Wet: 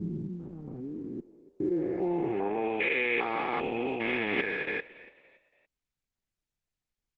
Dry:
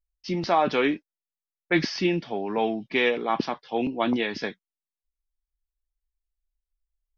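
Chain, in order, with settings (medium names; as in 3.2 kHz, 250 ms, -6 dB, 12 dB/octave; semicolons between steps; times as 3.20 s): spectrogram pixelated in time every 400 ms; gate with hold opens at -34 dBFS; peaking EQ 2.2 kHz +6 dB 0.48 oct; comb 2.4 ms, depth 46%; reverse; compression 6:1, threshold -36 dBFS, peak gain reduction 12.5 dB; reverse; low-pass sweep 190 Hz -> 2.5 kHz, 1.34–2.68 s; distance through air 140 m; on a send: frequency-shifting echo 284 ms, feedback 37%, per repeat +45 Hz, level -19 dB; on the sum: trim +8 dB; Opus 12 kbps 48 kHz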